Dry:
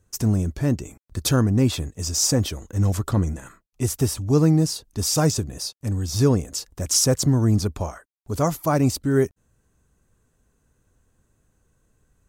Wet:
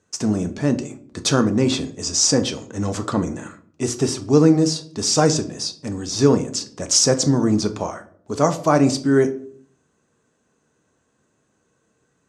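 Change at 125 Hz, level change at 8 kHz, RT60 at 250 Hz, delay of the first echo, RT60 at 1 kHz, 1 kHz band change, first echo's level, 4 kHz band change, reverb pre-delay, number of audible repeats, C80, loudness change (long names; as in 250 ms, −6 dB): −3.0 dB, +3.5 dB, 0.80 s, no echo audible, 0.50 s, +5.5 dB, no echo audible, +5.0 dB, 5 ms, no echo audible, 18.5 dB, +2.5 dB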